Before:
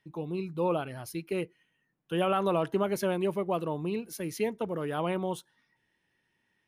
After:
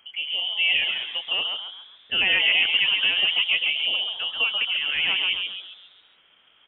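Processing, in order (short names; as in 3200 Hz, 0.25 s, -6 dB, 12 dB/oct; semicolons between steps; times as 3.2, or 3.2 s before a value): added noise pink -66 dBFS; inverted band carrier 3200 Hz; low shelf 160 Hz -8 dB; on a send: frequency-shifting echo 0.135 s, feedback 45%, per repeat +130 Hz, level -4 dB; on the sum: gain +5.5 dB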